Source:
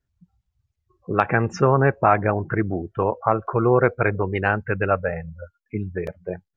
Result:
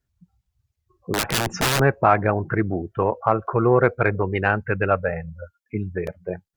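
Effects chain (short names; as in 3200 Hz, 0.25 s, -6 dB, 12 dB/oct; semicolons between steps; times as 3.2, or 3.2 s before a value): high shelf 5800 Hz +4.5 dB; 1.13–1.8 wrapped overs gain 15.5 dB; added harmonics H 5 -36 dB, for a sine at -2 dBFS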